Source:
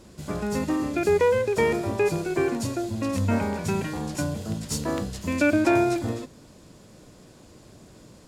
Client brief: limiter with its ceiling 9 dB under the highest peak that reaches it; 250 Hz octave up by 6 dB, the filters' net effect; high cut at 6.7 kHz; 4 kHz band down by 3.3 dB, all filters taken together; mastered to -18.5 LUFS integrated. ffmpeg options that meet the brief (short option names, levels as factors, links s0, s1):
-af "lowpass=6700,equalizer=f=250:t=o:g=8,equalizer=f=4000:t=o:g=-3.5,volume=1.88,alimiter=limit=0.355:level=0:latency=1"